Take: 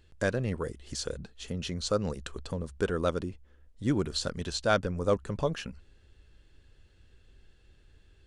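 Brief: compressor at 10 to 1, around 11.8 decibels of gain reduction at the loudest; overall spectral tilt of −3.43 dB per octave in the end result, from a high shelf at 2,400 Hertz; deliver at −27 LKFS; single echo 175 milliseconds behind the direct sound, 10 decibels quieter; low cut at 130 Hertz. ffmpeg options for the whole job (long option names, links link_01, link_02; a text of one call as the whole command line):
ffmpeg -i in.wav -af "highpass=130,highshelf=frequency=2400:gain=8,acompressor=threshold=-32dB:ratio=10,aecho=1:1:175:0.316,volume=10.5dB" out.wav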